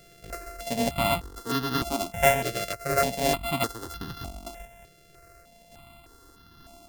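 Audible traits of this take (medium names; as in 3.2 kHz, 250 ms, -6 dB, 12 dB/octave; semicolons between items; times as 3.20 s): a buzz of ramps at a fixed pitch in blocks of 64 samples; random-step tremolo; notches that jump at a steady rate 3.3 Hz 250–2300 Hz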